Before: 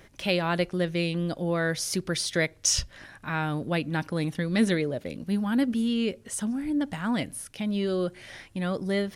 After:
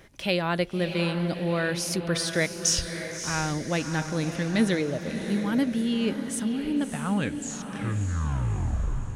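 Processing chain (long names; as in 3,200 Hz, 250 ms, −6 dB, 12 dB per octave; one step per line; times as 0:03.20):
turntable brake at the end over 2.38 s
feedback delay with all-pass diffusion 619 ms, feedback 50%, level −8 dB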